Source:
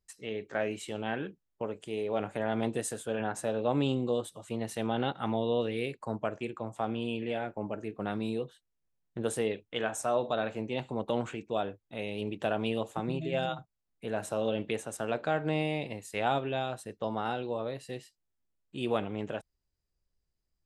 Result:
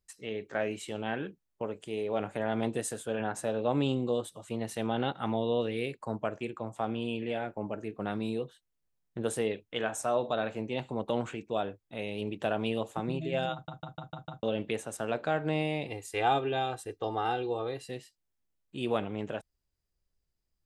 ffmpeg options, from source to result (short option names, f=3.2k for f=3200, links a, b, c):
-filter_complex "[0:a]asettb=1/sr,asplit=3[a][b][c];[a]atrim=end=15.884[d];[b]atrim=start=15.88:end=17.89,asetpts=PTS-STARTPTS,afade=t=in:d=0.004:c=qsin,afade=t=out:st=2.006:d=0.004:c=qsin,aecho=1:1:2.5:0.75,atrim=end_sample=88641[e];[c]atrim=start=17.886[f];[d][e]acrossfade=d=0.004:c1=hsin:c2=qsin[g];[g][f]acrossfade=d=0.004:c1=qsin:c2=hsin,asplit=7[h][i][j][k][l][m][n];[h]atrim=end=13.682[o];[i]atrim=start=13.528:end=13.682[p];[j]atrim=start=13.528:end=13.682[q];[k]atrim=start=13.528:end=13.682[r];[l]atrim=start=13.528:end=13.682[s];[m]atrim=start=13.528:end=13.682[t];[n]atrim=start=14.428[u];[o][p]acrossfade=d=0.004:c1=hsin:c2=hsin[v];[v][q]acrossfade=d=0.004:c1=hsin:c2=hsin[w];[w][r]acrossfade=d=0.004:c1=hsin:c2=hsin[x];[x][s]acrossfade=d=0.004:c1=hsin:c2=hsin[y];[y][t]acrossfade=d=0.004:c1=hsin:c2=hsin[z];[z][u]acrossfade=d=0.004:c1=hsin:c2=hsin"